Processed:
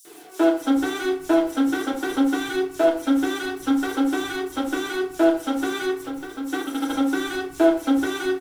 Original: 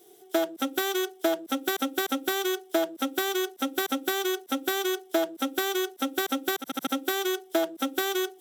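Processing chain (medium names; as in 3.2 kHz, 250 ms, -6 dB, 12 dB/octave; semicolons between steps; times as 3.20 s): one-bit delta coder 64 kbps, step -41.5 dBFS; 5.85–6.45 s: compression 4:1, threshold -38 dBFS, peak gain reduction 11.5 dB; bit crusher 9-bit; flange 0.28 Hz, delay 0.5 ms, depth 8.9 ms, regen -46%; three bands offset in time highs, mids, lows 50/420 ms, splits 160/5200 Hz; FDN reverb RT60 0.48 s, low-frequency decay 1.3×, high-frequency decay 0.5×, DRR -3 dB; trim +5 dB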